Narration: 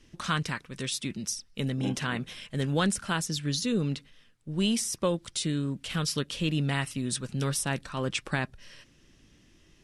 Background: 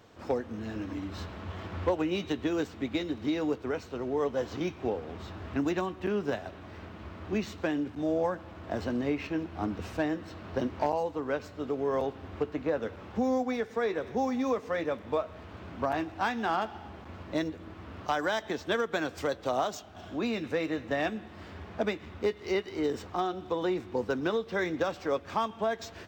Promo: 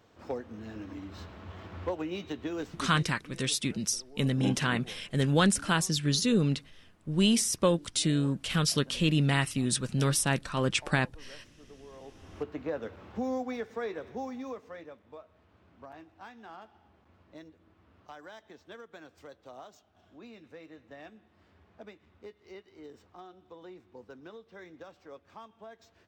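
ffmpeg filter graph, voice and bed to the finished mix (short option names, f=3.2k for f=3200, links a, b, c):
-filter_complex "[0:a]adelay=2600,volume=2.5dB[a];[1:a]volume=11dB,afade=t=out:st=2.85:d=0.24:silence=0.16788,afade=t=in:st=12:d=0.46:silence=0.149624,afade=t=out:st=13.64:d=1.36:silence=0.199526[b];[a][b]amix=inputs=2:normalize=0"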